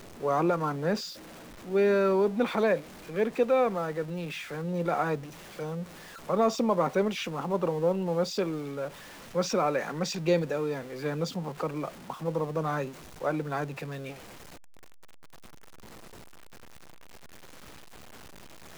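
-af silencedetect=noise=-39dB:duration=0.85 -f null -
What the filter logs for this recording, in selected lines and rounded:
silence_start: 14.14
silence_end: 18.77 | silence_duration: 4.64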